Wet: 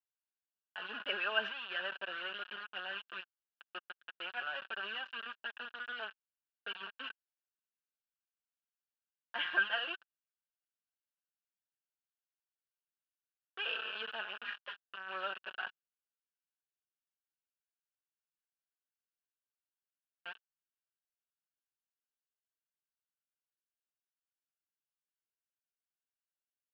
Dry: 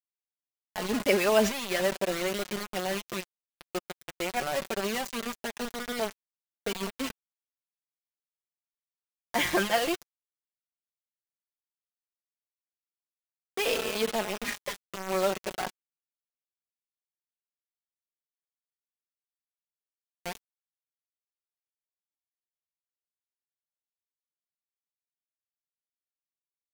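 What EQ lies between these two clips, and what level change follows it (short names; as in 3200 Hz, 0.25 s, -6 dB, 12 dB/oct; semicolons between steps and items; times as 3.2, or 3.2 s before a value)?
double band-pass 2100 Hz, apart 0.87 oct; air absorption 390 m; bell 2200 Hz +3 dB 1 oct; +4.5 dB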